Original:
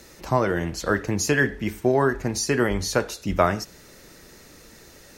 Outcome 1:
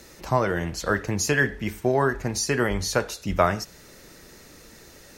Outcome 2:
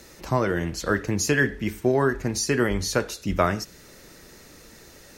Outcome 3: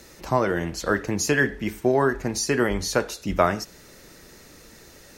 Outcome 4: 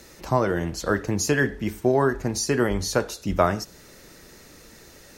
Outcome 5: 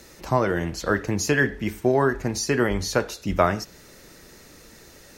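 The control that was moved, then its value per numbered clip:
dynamic EQ, frequency: 300, 780, 100, 2200, 9100 Hz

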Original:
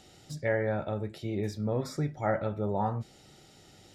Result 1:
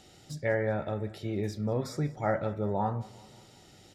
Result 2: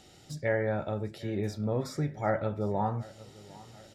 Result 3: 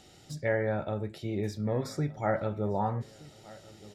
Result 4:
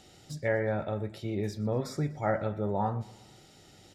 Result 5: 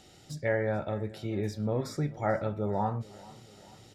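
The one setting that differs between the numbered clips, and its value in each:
feedback echo, time: 0.191, 0.753, 1.22, 0.121, 0.437 s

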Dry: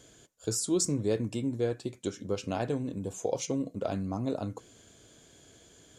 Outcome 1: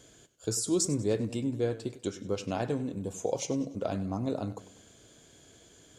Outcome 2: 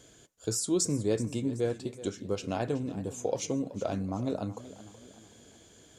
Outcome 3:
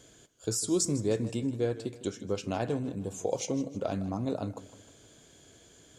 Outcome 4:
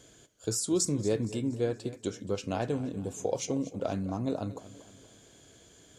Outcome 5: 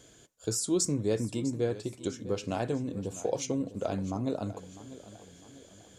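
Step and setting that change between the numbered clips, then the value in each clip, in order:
warbling echo, time: 97, 376, 156, 235, 650 ms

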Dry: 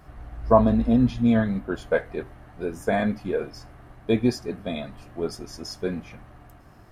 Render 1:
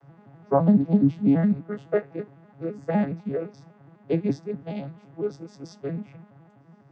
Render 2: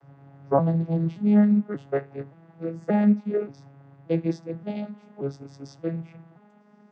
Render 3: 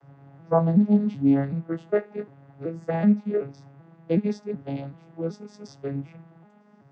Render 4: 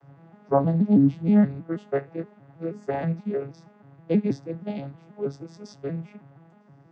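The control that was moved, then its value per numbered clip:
arpeggiated vocoder, a note every: 84, 578, 378, 159 ms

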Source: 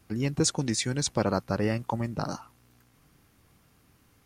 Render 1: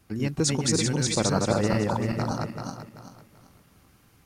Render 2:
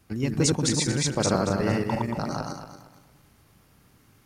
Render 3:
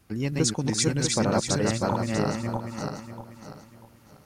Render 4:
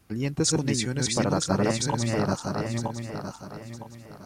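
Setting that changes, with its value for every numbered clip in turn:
regenerating reverse delay, time: 0.193, 0.115, 0.321, 0.48 s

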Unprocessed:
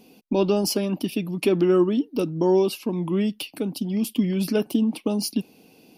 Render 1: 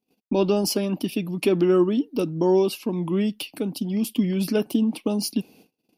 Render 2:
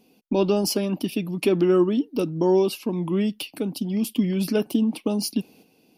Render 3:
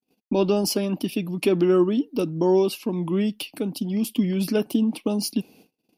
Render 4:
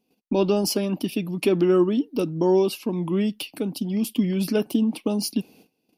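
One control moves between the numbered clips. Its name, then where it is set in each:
gate, range: -33, -7, -48, -21 dB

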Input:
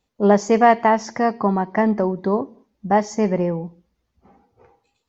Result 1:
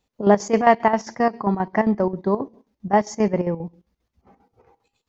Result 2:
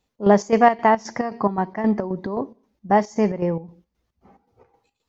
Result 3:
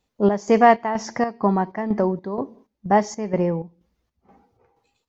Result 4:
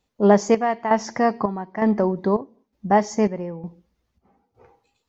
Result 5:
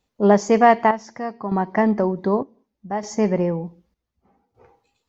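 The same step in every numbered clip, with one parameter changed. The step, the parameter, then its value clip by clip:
chopper, rate: 7.5, 3.8, 2.1, 1.1, 0.66 Hz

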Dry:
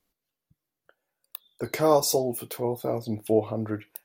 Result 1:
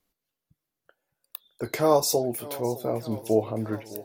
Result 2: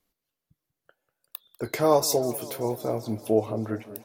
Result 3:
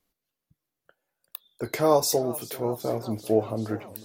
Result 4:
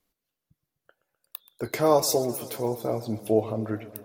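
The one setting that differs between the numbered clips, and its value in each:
warbling echo, time: 0.609, 0.192, 0.388, 0.126 s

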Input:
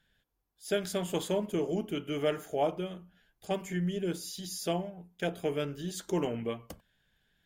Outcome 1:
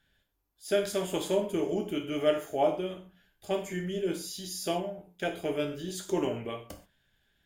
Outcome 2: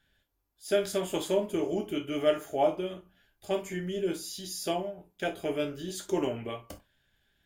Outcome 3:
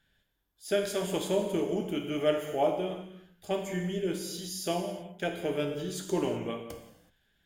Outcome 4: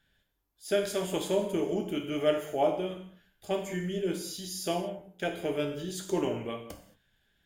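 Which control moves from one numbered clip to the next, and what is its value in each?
non-linear reverb, gate: 160, 90, 400, 250 ms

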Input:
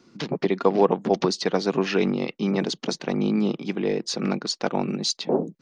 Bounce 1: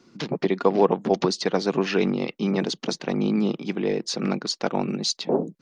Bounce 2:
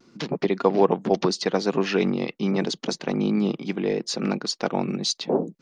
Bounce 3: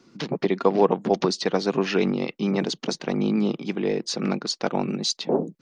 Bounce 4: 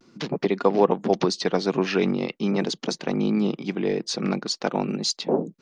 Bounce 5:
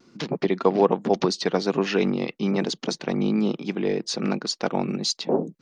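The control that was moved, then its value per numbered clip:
vibrato, rate: 15, 0.77, 9, 0.45, 1.2 Hz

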